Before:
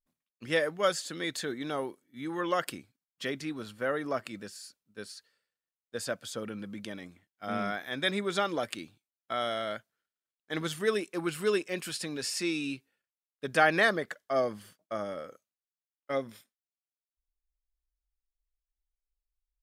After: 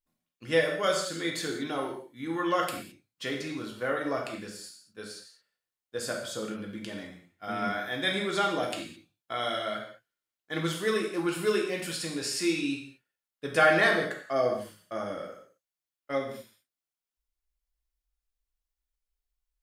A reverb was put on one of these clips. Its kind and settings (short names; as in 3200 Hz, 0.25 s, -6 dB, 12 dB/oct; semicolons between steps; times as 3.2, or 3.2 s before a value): non-linear reverb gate 0.24 s falling, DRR -0.5 dB; gain -1 dB